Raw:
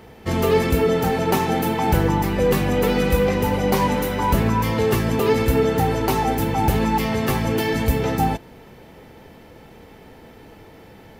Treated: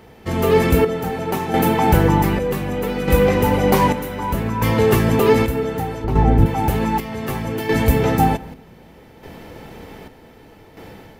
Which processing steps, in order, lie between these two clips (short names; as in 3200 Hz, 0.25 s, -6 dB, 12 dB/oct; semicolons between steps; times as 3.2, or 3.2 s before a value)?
on a send at -21 dB: reverb RT60 2.1 s, pre-delay 3 ms; on the sum: chopper 0.65 Hz, depth 60%, duty 55%; 6.04–6.46 RIAA curve playback; AGC gain up to 8 dB; dynamic EQ 4900 Hz, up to -4 dB, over -42 dBFS, Q 1.1; gain -1 dB